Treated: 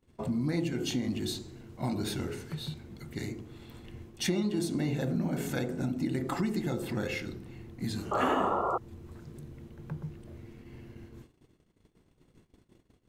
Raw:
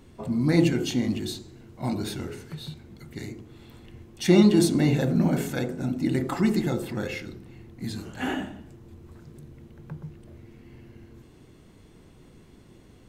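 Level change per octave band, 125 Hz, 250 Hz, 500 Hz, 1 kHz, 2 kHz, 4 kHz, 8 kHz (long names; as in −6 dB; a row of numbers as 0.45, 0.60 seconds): −7.0, −8.0, −6.0, +3.5, −4.5, −4.0, −4.5 decibels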